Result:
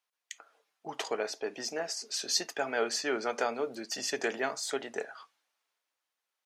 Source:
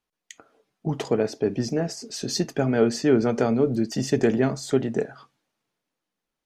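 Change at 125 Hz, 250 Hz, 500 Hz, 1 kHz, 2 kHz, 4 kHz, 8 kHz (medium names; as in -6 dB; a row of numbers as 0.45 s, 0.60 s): -30.0 dB, -19.0 dB, -10.5 dB, -2.5 dB, 0.0 dB, 0.0 dB, 0.0 dB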